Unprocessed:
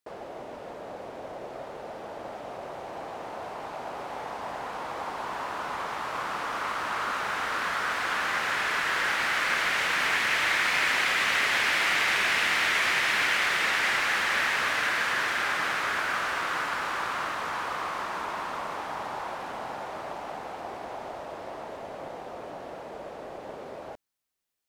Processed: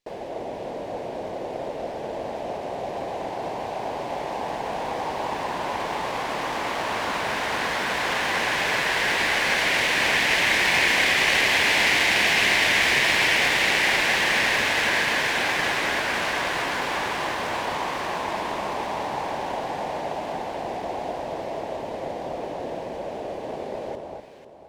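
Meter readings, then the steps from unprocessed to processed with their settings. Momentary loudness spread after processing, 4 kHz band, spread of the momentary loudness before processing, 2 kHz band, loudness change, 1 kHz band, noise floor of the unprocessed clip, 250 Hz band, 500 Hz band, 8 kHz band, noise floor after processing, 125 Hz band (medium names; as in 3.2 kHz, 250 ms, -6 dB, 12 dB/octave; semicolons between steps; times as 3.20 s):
15 LU, +6.5 dB, 17 LU, +4.0 dB, +3.5 dB, +3.5 dB, -42 dBFS, +9.5 dB, +8.5 dB, +6.0 dB, -34 dBFS, +10.0 dB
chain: low-pass 9.4 kHz; peaking EQ 1.3 kHz -14.5 dB 0.49 oct; echo whose repeats swap between lows and highs 247 ms, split 1.3 kHz, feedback 54%, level -2 dB; sliding maximum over 3 samples; trim +7 dB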